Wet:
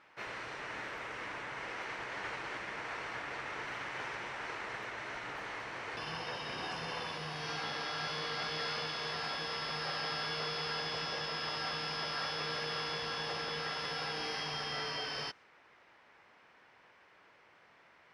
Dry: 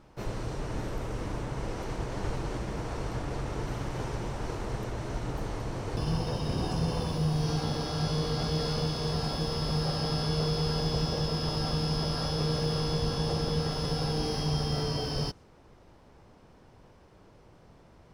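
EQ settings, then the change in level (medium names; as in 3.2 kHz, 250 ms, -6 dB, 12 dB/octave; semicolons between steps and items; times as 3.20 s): band-pass filter 2 kHz, Q 1.9; +8.0 dB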